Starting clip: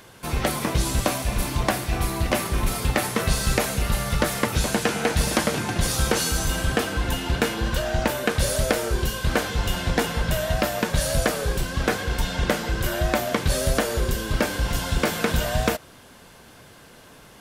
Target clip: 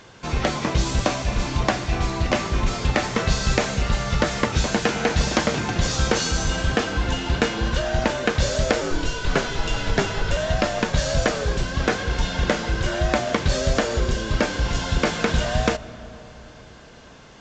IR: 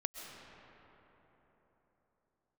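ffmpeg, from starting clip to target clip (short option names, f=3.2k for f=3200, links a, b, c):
-filter_complex "[0:a]asettb=1/sr,asplit=3[a][b][c];[a]atrim=end=8.814[d];[b]atrim=start=8.81:end=10.37,asetpts=PTS-STARTPTS,afade=t=in:d=0.004:c=qsin,afade=t=out:st=1.556:d=0.004:c=qsin,afreqshift=-68[e];[c]atrim=start=10.366[f];[d][e]acrossfade=d=0.004:c1=hsin:c2=qsin[g];[g][f]acrossfade=d=0.004:c1=qsin:c2=hsin,asplit=2[h][i];[1:a]atrim=start_sample=2205[j];[i][j]afir=irnorm=-1:irlink=0,volume=-12.5dB[k];[h][k]amix=inputs=2:normalize=0" -ar 16000 -c:a aac -b:a 64k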